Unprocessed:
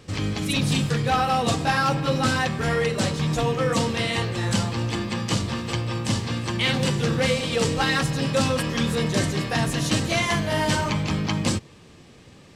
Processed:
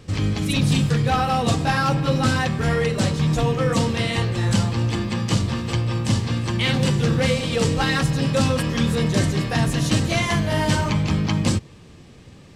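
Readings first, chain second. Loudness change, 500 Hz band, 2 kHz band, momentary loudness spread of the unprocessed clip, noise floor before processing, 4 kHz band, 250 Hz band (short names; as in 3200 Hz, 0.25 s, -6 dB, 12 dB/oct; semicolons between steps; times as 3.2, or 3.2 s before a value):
+2.5 dB, +1.0 dB, 0.0 dB, 5 LU, -49 dBFS, 0.0 dB, +3.5 dB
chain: low shelf 190 Hz +7.5 dB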